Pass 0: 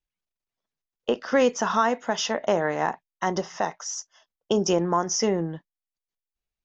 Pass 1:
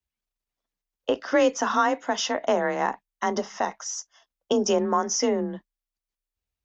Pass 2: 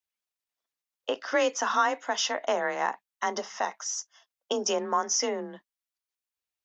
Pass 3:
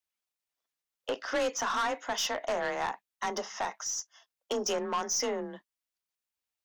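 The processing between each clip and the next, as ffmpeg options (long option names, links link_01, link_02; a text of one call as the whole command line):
ffmpeg -i in.wav -af "afreqshift=31" out.wav
ffmpeg -i in.wav -af "highpass=frequency=800:poles=1" out.wav
ffmpeg -i in.wav -af "aeval=exprs='(tanh(17.8*val(0)+0.1)-tanh(0.1))/17.8':channel_layout=same" out.wav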